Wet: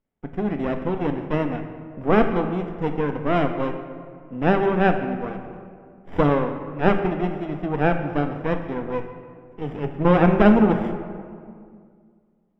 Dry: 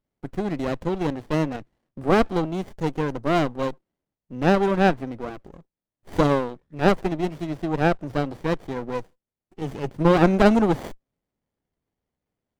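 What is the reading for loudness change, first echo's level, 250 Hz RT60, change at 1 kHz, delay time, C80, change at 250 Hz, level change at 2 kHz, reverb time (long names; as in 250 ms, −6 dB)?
+1.0 dB, no echo audible, 2.5 s, +1.0 dB, no echo audible, 9.0 dB, +1.5 dB, +1.0 dB, 2.2 s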